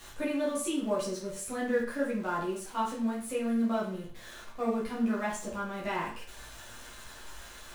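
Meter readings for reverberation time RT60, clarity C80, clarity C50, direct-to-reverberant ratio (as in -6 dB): 0.45 s, 10.0 dB, 5.0 dB, -7.0 dB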